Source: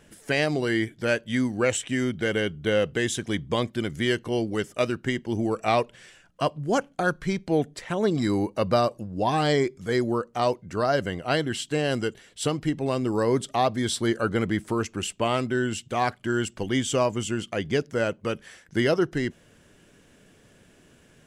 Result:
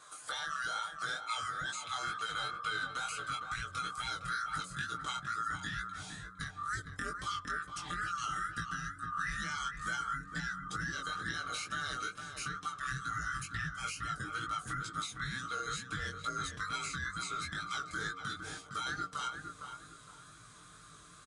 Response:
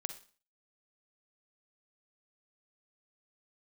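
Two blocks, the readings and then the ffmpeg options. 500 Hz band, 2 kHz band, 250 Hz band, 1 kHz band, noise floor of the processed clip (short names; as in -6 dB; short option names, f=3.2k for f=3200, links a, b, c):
-29.0 dB, -5.5 dB, -23.5 dB, -7.5 dB, -55 dBFS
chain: -filter_complex "[0:a]afftfilt=real='real(if(lt(b,960),b+48*(1-2*mod(floor(b/48),2)),b),0)':imag='imag(if(lt(b,960),b+48*(1-2*mod(floor(b/48),2)),b),0)':win_size=2048:overlap=0.75,highpass=58,aemphasis=mode=production:type=50fm,aecho=1:1:6.6:0.6,bandreject=f=92.94:t=h:w=4,bandreject=f=185.88:t=h:w=4,bandreject=f=278.82:t=h:w=4,bandreject=f=371.76:t=h:w=4,bandreject=f=464.7:t=h:w=4,bandreject=f=557.64:t=h:w=4,bandreject=f=650.58:t=h:w=4,bandreject=f=743.52:t=h:w=4,bandreject=f=836.46:t=h:w=4,asubboost=boost=12:cutoff=170,acompressor=threshold=-22dB:ratio=8,alimiter=limit=-20dB:level=0:latency=1:release=212,acrossover=split=1300|4200[a][b][c];[a]acompressor=threshold=-41dB:ratio=4[d];[b]acompressor=threshold=-35dB:ratio=4[e];[c]acompressor=threshold=-44dB:ratio=4[f];[d][e][f]amix=inputs=3:normalize=0,aresample=22050,aresample=44100,asplit=2[g][h];[h]adelay=459,lowpass=f=1.4k:p=1,volume=-5dB,asplit=2[i][j];[j]adelay=459,lowpass=f=1.4k:p=1,volume=0.35,asplit=2[k][l];[l]adelay=459,lowpass=f=1.4k:p=1,volume=0.35,asplit=2[m][n];[n]adelay=459,lowpass=f=1.4k:p=1,volume=0.35[o];[i][k][m][o]amix=inputs=4:normalize=0[p];[g][p]amix=inputs=2:normalize=0,flanger=delay=17.5:depth=5.6:speed=2.2"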